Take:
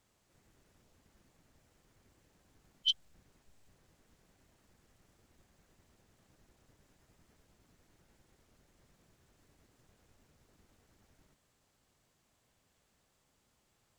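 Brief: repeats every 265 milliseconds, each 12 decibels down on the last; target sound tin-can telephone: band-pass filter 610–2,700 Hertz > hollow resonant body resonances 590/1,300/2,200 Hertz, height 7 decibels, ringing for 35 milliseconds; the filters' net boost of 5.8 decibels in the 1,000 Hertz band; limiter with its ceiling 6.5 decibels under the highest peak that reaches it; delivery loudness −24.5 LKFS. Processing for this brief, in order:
parametric band 1,000 Hz +8.5 dB
brickwall limiter −24 dBFS
band-pass filter 610–2,700 Hz
repeating echo 265 ms, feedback 25%, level −12 dB
hollow resonant body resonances 590/1,300/2,200 Hz, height 7 dB, ringing for 35 ms
level +20 dB

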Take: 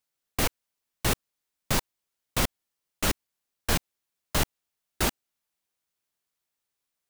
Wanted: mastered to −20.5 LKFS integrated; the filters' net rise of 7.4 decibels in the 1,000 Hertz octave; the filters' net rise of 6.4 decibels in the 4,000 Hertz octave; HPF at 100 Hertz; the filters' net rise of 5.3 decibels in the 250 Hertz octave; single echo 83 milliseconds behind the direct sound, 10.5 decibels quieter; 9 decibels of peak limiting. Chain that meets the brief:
high-pass filter 100 Hz
parametric band 250 Hz +6.5 dB
parametric band 1,000 Hz +8.5 dB
parametric band 4,000 Hz +7.5 dB
brickwall limiter −17 dBFS
single-tap delay 83 ms −10.5 dB
level +12 dB

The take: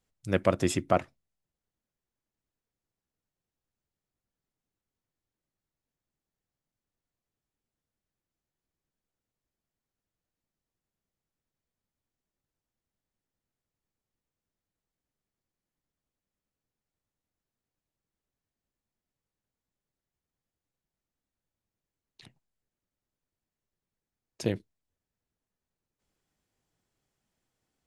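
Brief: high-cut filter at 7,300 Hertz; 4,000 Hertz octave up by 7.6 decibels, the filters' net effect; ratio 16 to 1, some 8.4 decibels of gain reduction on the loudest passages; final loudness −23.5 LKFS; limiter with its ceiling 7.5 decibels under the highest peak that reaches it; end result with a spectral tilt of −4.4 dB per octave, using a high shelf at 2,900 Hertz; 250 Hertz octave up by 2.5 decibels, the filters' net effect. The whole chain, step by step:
low-pass filter 7,300 Hz
parametric band 250 Hz +3.5 dB
high-shelf EQ 2,900 Hz +5.5 dB
parametric band 4,000 Hz +6 dB
downward compressor 16 to 1, threshold −25 dBFS
level +13 dB
brickwall limiter −6 dBFS

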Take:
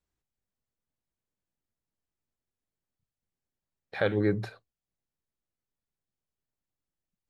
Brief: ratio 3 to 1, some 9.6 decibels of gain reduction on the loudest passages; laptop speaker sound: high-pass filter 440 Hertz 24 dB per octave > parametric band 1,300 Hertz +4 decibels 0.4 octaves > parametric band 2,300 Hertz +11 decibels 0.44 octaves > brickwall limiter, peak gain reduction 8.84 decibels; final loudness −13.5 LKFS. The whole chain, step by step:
downward compressor 3 to 1, threshold −34 dBFS
high-pass filter 440 Hz 24 dB per octave
parametric band 1,300 Hz +4 dB 0.4 octaves
parametric band 2,300 Hz +11 dB 0.44 octaves
level +28.5 dB
brickwall limiter 0 dBFS

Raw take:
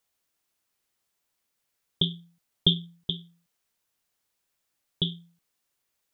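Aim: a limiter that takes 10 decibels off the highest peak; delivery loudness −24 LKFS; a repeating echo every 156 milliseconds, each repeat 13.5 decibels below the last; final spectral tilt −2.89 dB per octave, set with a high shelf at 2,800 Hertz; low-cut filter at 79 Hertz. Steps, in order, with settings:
high-pass filter 79 Hz
high-shelf EQ 2,800 Hz −6.5 dB
brickwall limiter −18.5 dBFS
repeating echo 156 ms, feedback 21%, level −13.5 dB
level +12 dB

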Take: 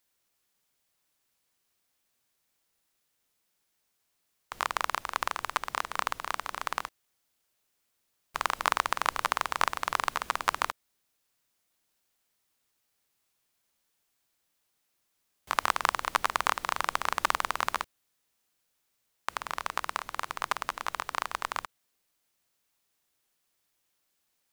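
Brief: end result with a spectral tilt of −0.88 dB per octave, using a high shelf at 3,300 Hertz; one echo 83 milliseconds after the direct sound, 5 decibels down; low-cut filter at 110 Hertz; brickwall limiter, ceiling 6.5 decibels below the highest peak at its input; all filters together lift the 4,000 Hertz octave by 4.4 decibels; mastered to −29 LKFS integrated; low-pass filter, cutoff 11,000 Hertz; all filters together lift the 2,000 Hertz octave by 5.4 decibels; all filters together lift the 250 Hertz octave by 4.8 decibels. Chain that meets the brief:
high-pass filter 110 Hz
low-pass filter 11,000 Hz
parametric band 250 Hz +6.5 dB
parametric band 2,000 Hz +7 dB
high-shelf EQ 3,300 Hz −5.5 dB
parametric band 4,000 Hz +7 dB
brickwall limiter −7.5 dBFS
single-tap delay 83 ms −5 dB

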